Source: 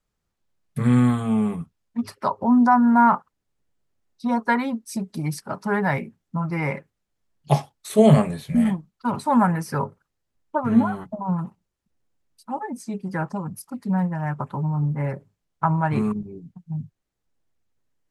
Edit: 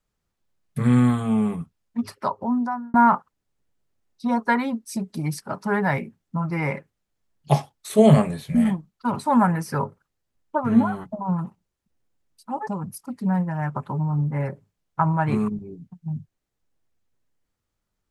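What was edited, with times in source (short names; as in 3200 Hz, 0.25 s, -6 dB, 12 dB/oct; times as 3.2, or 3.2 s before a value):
2.13–2.94 fade out
12.67–13.31 cut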